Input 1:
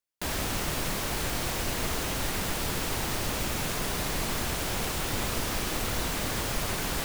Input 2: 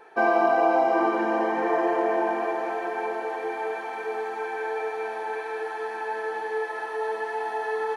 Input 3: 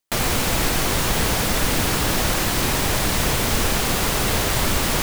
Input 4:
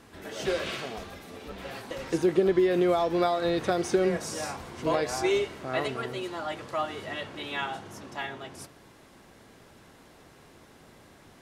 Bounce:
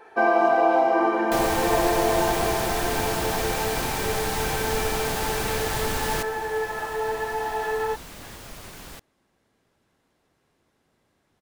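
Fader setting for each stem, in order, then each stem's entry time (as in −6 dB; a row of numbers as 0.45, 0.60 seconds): −11.0, +1.5, −8.0, −16.0 decibels; 1.95, 0.00, 1.20, 0.05 seconds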